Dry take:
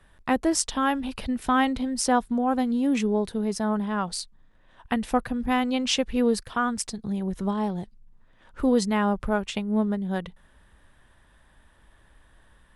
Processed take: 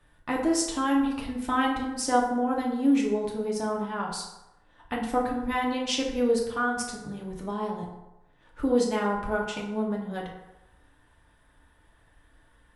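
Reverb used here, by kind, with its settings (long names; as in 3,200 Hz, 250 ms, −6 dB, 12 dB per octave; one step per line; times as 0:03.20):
feedback delay network reverb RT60 0.98 s, low-frequency decay 0.75×, high-frequency decay 0.55×, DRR −2.5 dB
level −6.5 dB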